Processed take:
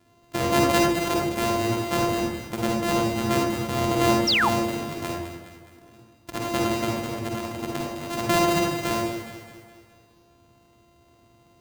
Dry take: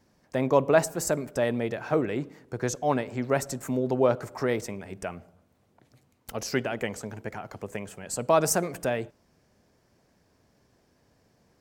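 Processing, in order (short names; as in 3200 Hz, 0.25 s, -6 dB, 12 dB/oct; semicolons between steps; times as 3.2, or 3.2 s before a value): sample sorter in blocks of 128 samples; HPF 46 Hz; in parallel at +1 dB: compressor, threshold -33 dBFS, peak gain reduction 17.5 dB; on the sum: echo with dull and thin repeats by turns 0.104 s, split 1000 Hz, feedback 71%, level -6.5 dB; reverb RT60 0.45 s, pre-delay 45 ms, DRR -0.5 dB; painted sound fall, 4.27–4.49, 750–6100 Hz -17 dBFS; gain -3.5 dB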